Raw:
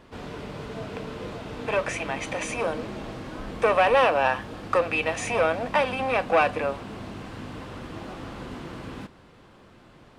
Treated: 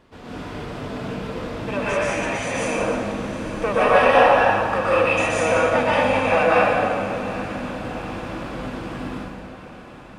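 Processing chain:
on a send: feedback delay with all-pass diffusion 837 ms, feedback 54%, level −14 dB
on the sum: dense smooth reverb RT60 1.8 s, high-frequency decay 0.7×, pre-delay 110 ms, DRR −8.5 dB
level −3.5 dB

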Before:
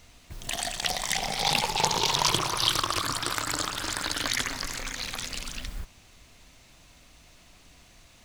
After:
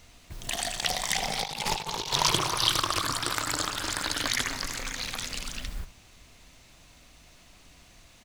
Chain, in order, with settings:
single-tap delay 77 ms −15 dB
0:01.40–0:02.13: compressor whose output falls as the input rises −31 dBFS, ratio −0.5

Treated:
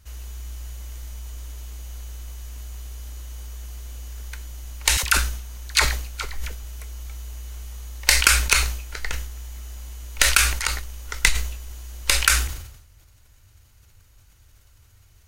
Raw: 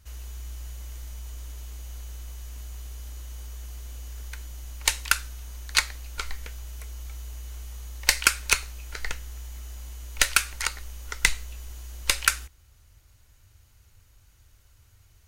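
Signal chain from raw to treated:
0:04.97–0:06.63: all-pass dispersion lows, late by 64 ms, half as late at 620 Hz
level that may fall only so fast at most 66 dB per second
level +2.5 dB

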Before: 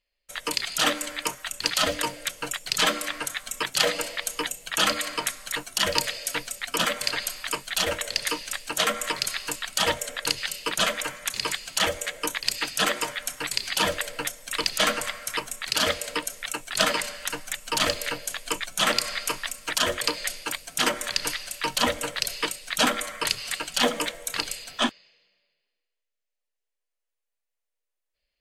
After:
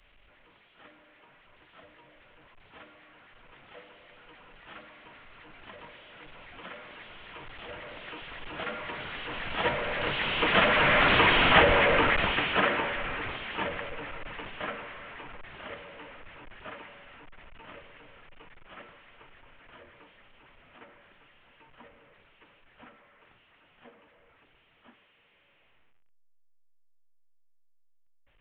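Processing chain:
linear delta modulator 16 kbit/s, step −20 dBFS
source passing by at 0:11.35, 8 m/s, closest 5.2 metres
multiband upward and downward expander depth 70%

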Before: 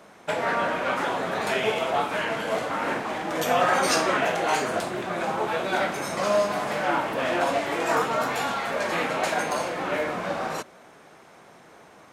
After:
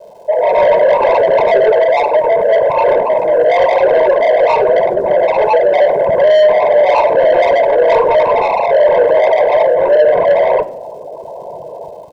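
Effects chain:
spectral envelope exaggerated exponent 3
Butterworth low-pass 1,000 Hz 96 dB per octave
notch filter 770 Hz, Q 24
comb filter 1.3 ms, depth 53%
in parallel at −2.5 dB: brickwall limiter −20 dBFS, peak gain reduction 10 dB
on the sum: automatic gain control gain up to 11 dB
soft clipping −14 dBFS, distortion −11 dB
surface crackle 420 per second −47 dBFS
convolution reverb RT60 0.70 s, pre-delay 4 ms, DRR 13 dB
level +3 dB

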